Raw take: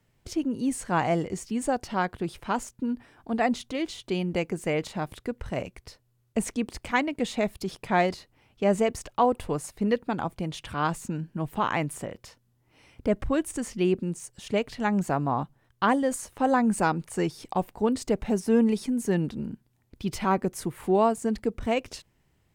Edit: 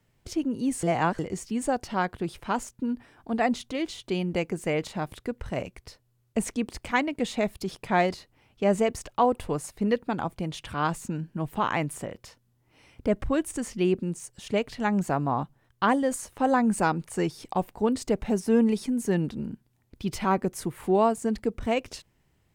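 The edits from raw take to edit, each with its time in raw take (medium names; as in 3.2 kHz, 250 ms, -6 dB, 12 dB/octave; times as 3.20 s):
0.83–1.19 s: reverse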